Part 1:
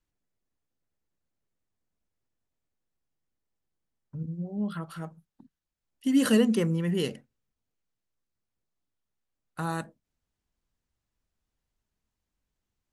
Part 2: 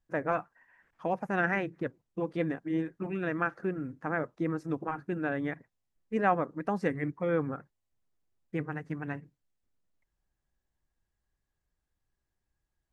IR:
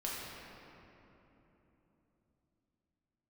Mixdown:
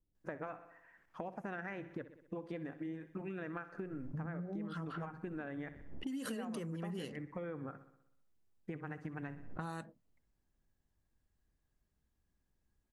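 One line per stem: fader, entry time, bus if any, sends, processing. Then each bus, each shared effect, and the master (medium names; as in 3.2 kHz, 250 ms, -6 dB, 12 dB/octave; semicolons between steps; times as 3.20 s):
+2.0 dB, 0.00 s, no send, no echo send, compression 2.5:1, threshold -34 dBFS, peak gain reduction 11.5 dB; level-controlled noise filter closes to 420 Hz, open at -30.5 dBFS; swell ahead of each attack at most 96 dB/s
-1.5 dB, 0.15 s, no send, echo send -16 dB, compression 3:1, threshold -35 dBFS, peak gain reduction 11 dB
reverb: none
echo: feedback delay 63 ms, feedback 58%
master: compression 6:1, threshold -39 dBFS, peak gain reduction 14 dB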